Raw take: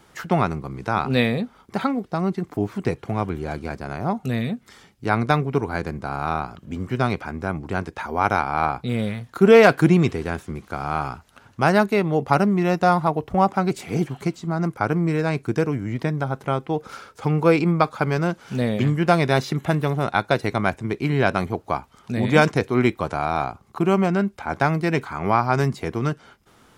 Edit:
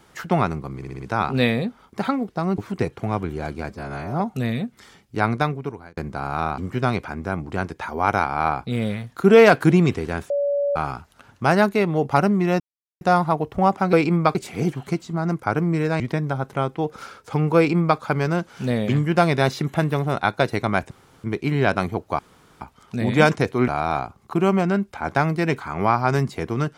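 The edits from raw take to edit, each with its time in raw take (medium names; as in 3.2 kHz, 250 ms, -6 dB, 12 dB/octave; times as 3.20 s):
0.76 s: stutter 0.06 s, 5 plays
2.34–2.64 s: delete
3.75–4.09 s: stretch 1.5×
5.14–5.86 s: fade out
6.47–6.75 s: delete
10.47–10.93 s: bleep 570 Hz -18.5 dBFS
12.77 s: insert silence 0.41 s
15.34–15.91 s: delete
17.48–17.90 s: copy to 13.69 s
20.82 s: insert room tone 0.33 s
21.77 s: insert room tone 0.42 s
22.84–23.13 s: delete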